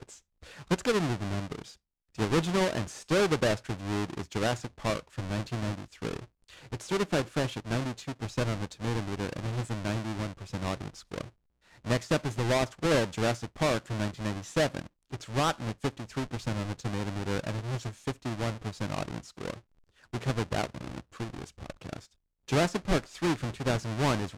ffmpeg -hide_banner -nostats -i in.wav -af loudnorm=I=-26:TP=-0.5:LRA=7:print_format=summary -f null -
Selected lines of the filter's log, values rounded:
Input Integrated:    -31.5 LUFS
Input True Peak:     -18.0 dBTP
Input LRA:             5.8 LU
Input Threshold:     -42.2 LUFS